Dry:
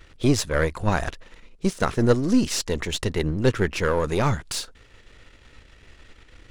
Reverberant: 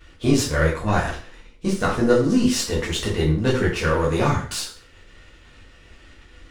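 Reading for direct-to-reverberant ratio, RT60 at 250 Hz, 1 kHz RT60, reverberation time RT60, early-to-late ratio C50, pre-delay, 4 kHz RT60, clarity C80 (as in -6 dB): -5.5 dB, 0.40 s, 0.40 s, 0.40 s, 6.5 dB, 4 ms, 0.40 s, 10.5 dB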